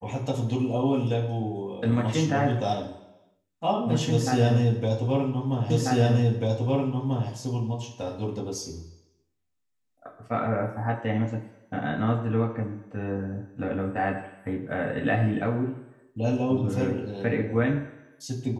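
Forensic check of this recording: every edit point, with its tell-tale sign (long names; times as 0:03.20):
0:05.70: the same again, the last 1.59 s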